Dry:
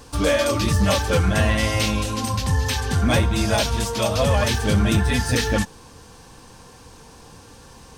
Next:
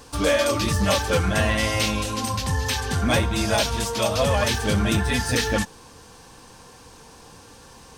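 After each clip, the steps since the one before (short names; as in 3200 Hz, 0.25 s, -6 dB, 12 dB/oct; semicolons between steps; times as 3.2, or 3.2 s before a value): low shelf 230 Hz -5 dB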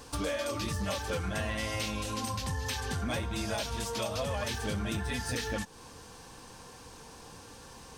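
compressor 4:1, threshold -29 dBFS, peak gain reduction 11 dB; gain -3 dB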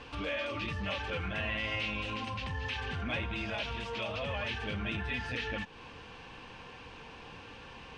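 limiter -29.5 dBFS, peak gain reduction 7 dB; synth low-pass 2700 Hz, resonance Q 3.3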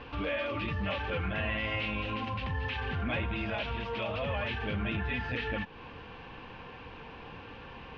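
air absorption 260 m; gain +4 dB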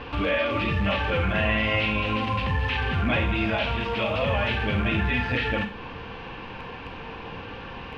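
rattling part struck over -43 dBFS, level -39 dBFS; Schroeder reverb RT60 0.38 s, combs from 33 ms, DRR 7 dB; gain +8 dB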